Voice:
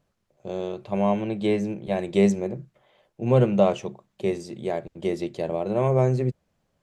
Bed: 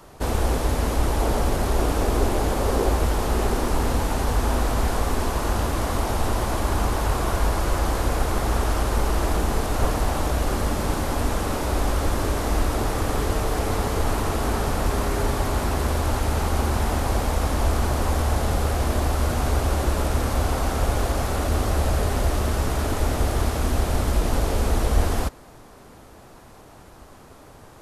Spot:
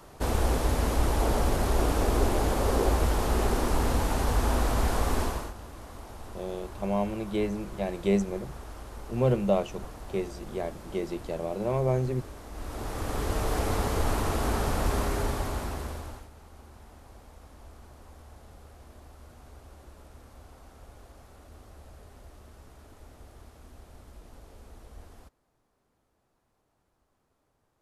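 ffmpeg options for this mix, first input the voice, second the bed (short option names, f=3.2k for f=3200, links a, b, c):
-filter_complex "[0:a]adelay=5900,volume=-5.5dB[a];[1:a]volume=12.5dB,afade=t=out:st=5.2:d=0.33:silence=0.149624,afade=t=in:st=12.52:d=1.02:silence=0.158489,afade=t=out:st=14.97:d=1.32:silence=0.0630957[b];[a][b]amix=inputs=2:normalize=0"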